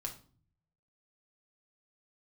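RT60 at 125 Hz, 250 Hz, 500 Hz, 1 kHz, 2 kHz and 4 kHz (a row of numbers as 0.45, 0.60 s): 1.1, 0.75, 0.45, 0.40, 0.35, 0.35 s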